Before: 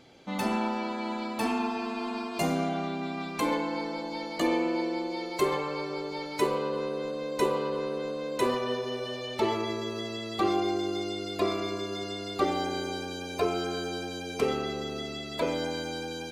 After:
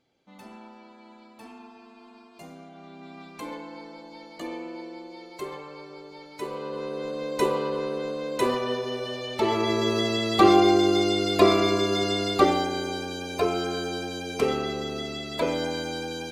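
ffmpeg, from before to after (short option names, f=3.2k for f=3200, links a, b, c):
-af "volume=10dB,afade=t=in:st=2.72:d=0.44:silence=0.398107,afade=t=in:st=6.38:d=0.85:silence=0.266073,afade=t=in:st=9.44:d=0.46:silence=0.421697,afade=t=out:st=12.23:d=0.45:silence=0.446684"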